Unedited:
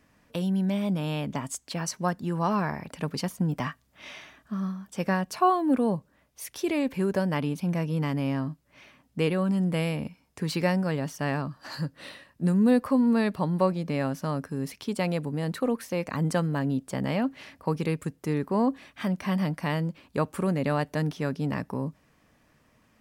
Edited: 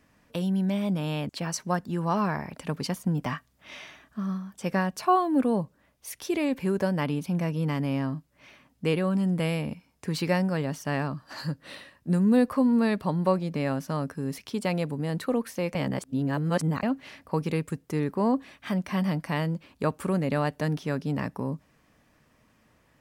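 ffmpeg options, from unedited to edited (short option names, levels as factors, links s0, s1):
-filter_complex "[0:a]asplit=4[s0][s1][s2][s3];[s0]atrim=end=1.292[s4];[s1]atrim=start=1.628:end=16.092[s5];[s2]atrim=start=16.088:end=17.172,asetpts=PTS-STARTPTS,areverse[s6];[s3]atrim=start=17.168[s7];[s4][s5]acrossfade=d=0.004:c1=hsin:c2=hsin[s8];[s8][s6]acrossfade=d=0.004:c1=hsin:c2=hsin[s9];[s9][s7]acrossfade=d=0.004:c1=hsin:c2=hsin"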